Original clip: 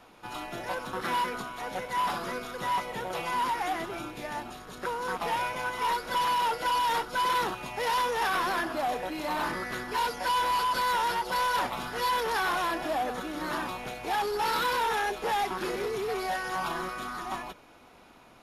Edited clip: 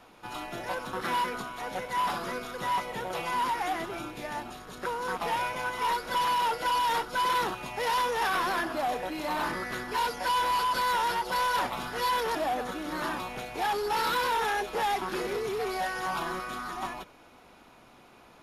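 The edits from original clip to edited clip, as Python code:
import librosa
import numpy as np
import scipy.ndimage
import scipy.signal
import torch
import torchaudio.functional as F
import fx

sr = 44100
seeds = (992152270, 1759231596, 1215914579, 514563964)

y = fx.edit(x, sr, fx.cut(start_s=12.35, length_s=0.49), tone=tone)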